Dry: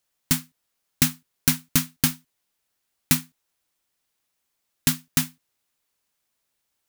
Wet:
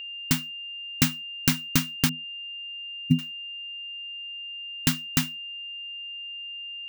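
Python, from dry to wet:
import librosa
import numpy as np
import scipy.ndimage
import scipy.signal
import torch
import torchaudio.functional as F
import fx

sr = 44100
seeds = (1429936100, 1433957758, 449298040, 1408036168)

y = fx.spec_expand(x, sr, power=3.0, at=(2.09, 3.19))
y = y + 10.0 ** (-34.0 / 20.0) * np.sin(2.0 * np.pi * 2800.0 * np.arange(len(y)) / sr)
y = fx.peak_eq(y, sr, hz=12000.0, db=-10.0, octaves=1.0)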